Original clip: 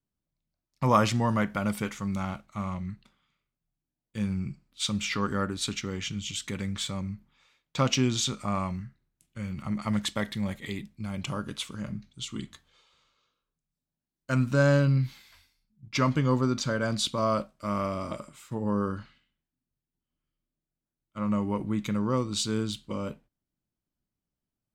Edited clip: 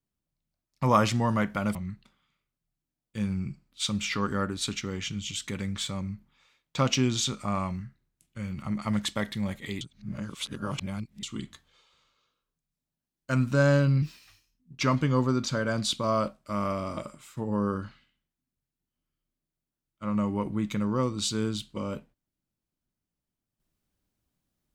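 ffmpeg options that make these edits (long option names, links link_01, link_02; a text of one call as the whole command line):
ffmpeg -i in.wav -filter_complex "[0:a]asplit=6[link_01][link_02][link_03][link_04][link_05][link_06];[link_01]atrim=end=1.752[link_07];[link_02]atrim=start=2.748:end=10.812[link_08];[link_03]atrim=start=10.808:end=12.232,asetpts=PTS-STARTPTS,areverse[link_09];[link_04]atrim=start=12.228:end=15.024[link_10];[link_05]atrim=start=15.02:end=15.95,asetpts=PTS-STARTPTS,asetrate=52038,aresample=44100[link_11];[link_06]atrim=start=15.946[link_12];[link_07][link_08]acrossfade=duration=0.004:curve1=hsin:curve2=hsin[link_13];[link_13][link_09]acrossfade=duration=0.004:curve1=hsin:curve2=hsin[link_14];[link_14][link_10]acrossfade=duration=0.004:curve1=hsin:curve2=hsin[link_15];[link_15][link_11]acrossfade=duration=0.004:curve1=hsin:curve2=hsin[link_16];[link_16][link_12]acrossfade=duration=0.004:curve1=hsin:curve2=hsin" out.wav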